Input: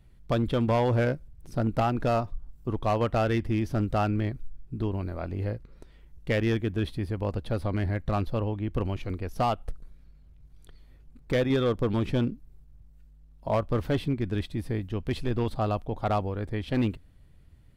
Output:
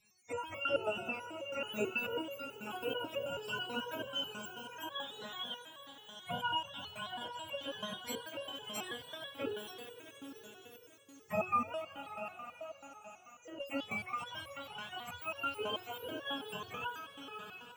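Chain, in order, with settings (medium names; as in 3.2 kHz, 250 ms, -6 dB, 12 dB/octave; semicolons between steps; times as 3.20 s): spectrum inverted on a logarithmic axis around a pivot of 570 Hz; 11.74–13.60 s: compression 1.5:1, threshold -55 dBFS, peak gain reduction 11.5 dB; echo with a slow build-up 94 ms, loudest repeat 5, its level -16.5 dB; resonator arpeggio 9.2 Hz 210–560 Hz; trim +6 dB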